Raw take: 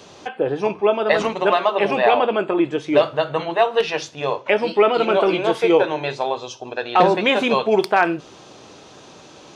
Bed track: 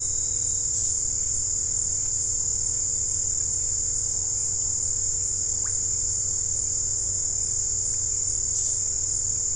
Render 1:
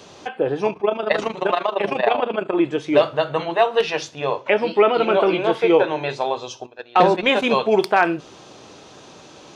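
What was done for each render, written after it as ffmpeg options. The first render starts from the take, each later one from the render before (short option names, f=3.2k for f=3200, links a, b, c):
-filter_complex "[0:a]asplit=3[a][b][c];[a]afade=t=out:st=0.7:d=0.02[d];[b]tremolo=f=26:d=0.75,afade=t=in:st=0.7:d=0.02,afade=t=out:st=2.53:d=0.02[e];[c]afade=t=in:st=2.53:d=0.02[f];[d][e][f]amix=inputs=3:normalize=0,asettb=1/sr,asplit=3[g][h][i];[g]atrim=end=4.184[j];[h]atrim=start=4.18:end=6.09,asetpts=PTS-STARTPTS,afade=t=in:d=0.004:c=qsin,afade=t=out:st=1.906:d=0.004:c=qsin,acrossover=split=4300[k][l];[l]acompressor=threshold=-52dB:ratio=4:attack=1:release=60[m];[k][m]amix=inputs=2:normalize=0[n];[i]atrim=start=6.086[o];[j][n]acrossfade=d=0.004:c1=hsin:c2=qsin[p];[p][o]acrossfade=d=0.004:c1=qsin:c2=hsin,asplit=3[q][r][s];[q]afade=t=out:st=6.65:d=0.02[t];[r]agate=range=-17dB:threshold=-22dB:ratio=16:release=100:detection=peak,afade=t=in:st=6.65:d=0.02,afade=t=out:st=7.48:d=0.02[u];[s]afade=t=in:st=7.48:d=0.02[v];[t][u][v]amix=inputs=3:normalize=0"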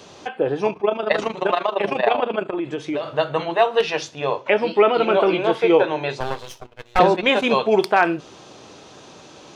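-filter_complex "[0:a]asettb=1/sr,asplit=3[a][b][c];[a]atrim=end=2.454[d];[b]atrim=start=2.45:end=3.09,asetpts=PTS-STARTPTS,afade=t=in:d=0.004:c=qsin,afade=t=out:st=0.636:d=0.004:c=qsin,acompressor=threshold=-21dB:ratio=8:attack=3.2:release=140:knee=1:detection=peak[e];[c]atrim=start=3.086[f];[d][e]acrossfade=d=0.004:c1=hsin:c2=qsin[g];[g][f]acrossfade=d=0.004:c1=qsin:c2=hsin,asettb=1/sr,asplit=3[h][i][j];[h]atrim=end=6.204[k];[i]atrim=start=6.2:end=6.99,asetpts=PTS-STARTPTS,afade=t=in:d=0.004:c=qsin,afade=t=out:st=0.786:d=0.004:c=qsin,aeval=exprs='max(val(0),0)':c=same[l];[j]atrim=start=6.986[m];[k][l]acrossfade=d=0.004:c1=hsin:c2=qsin[n];[n][m]acrossfade=d=0.004:c1=qsin:c2=hsin"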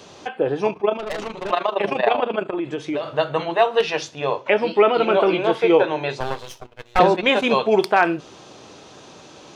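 -filter_complex "[0:a]asettb=1/sr,asplit=3[a][b][c];[a]atrim=end=0.994[d];[b]atrim=start=0.99:end=1.51,asetpts=PTS-STARTPTS,afade=t=in:d=0.004:c=qsin,afade=t=out:st=0.516:d=0.004:c=qsin,aeval=exprs='(tanh(15.8*val(0)+0.4)-tanh(0.4))/15.8':c=same[e];[c]atrim=start=1.506[f];[d][e]acrossfade=d=0.004:c1=hsin:c2=qsin[g];[g][f]acrossfade=d=0.004:c1=qsin:c2=hsin"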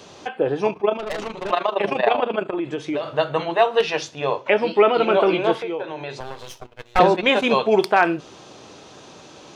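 -filter_complex "[0:a]asettb=1/sr,asplit=3[a][b][c];[a]atrim=end=5.594[d];[b]atrim=start=5.59:end=6.52,asetpts=PTS-STARTPTS,afade=t=in:d=0.004:c=qsin,afade=t=out:st=0.926:d=0.004:c=qsin,acompressor=threshold=-30dB:ratio=2.5:attack=3.2:release=140:knee=1:detection=peak[e];[c]atrim=start=6.516[f];[d][e]acrossfade=d=0.004:c1=hsin:c2=qsin[g];[g][f]acrossfade=d=0.004:c1=qsin:c2=hsin"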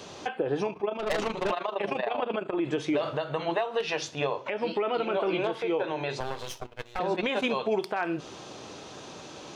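-af "acompressor=threshold=-20dB:ratio=10,alimiter=limit=-18dB:level=0:latency=1:release=198"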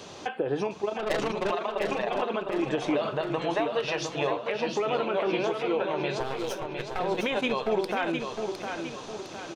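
-af "aecho=1:1:708|1416|2124|2832|3540:0.501|0.226|0.101|0.0457|0.0206"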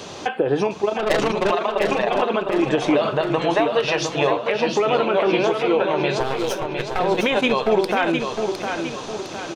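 -af "volume=8.5dB"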